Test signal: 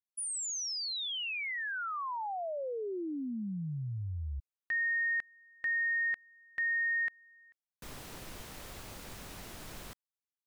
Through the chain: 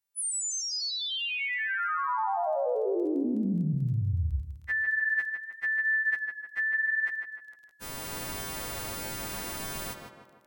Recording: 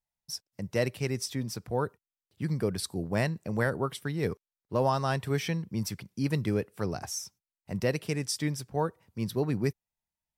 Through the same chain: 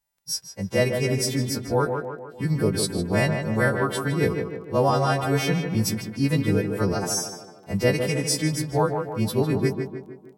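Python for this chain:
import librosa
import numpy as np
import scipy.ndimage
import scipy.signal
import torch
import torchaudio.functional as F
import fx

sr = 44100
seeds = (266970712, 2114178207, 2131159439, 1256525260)

p1 = fx.freq_snap(x, sr, grid_st=2)
p2 = fx.high_shelf(p1, sr, hz=2200.0, db=-9.0)
p3 = fx.rider(p2, sr, range_db=3, speed_s=0.5)
p4 = p2 + (p3 * librosa.db_to_amplitude(3.0))
p5 = fx.echo_tape(p4, sr, ms=153, feedback_pct=56, wet_db=-4.0, lp_hz=2200.0, drive_db=11.0, wow_cents=22)
y = fx.dmg_crackle(p5, sr, seeds[0], per_s=17.0, level_db=-46.0)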